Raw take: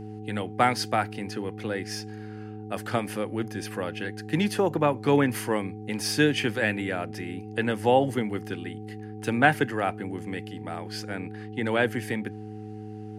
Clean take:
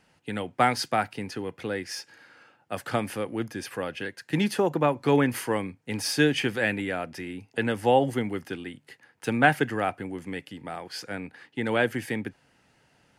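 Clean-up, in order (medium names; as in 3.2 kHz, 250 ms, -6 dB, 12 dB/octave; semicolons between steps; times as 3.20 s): de-hum 106.4 Hz, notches 4; band-stop 760 Hz, Q 30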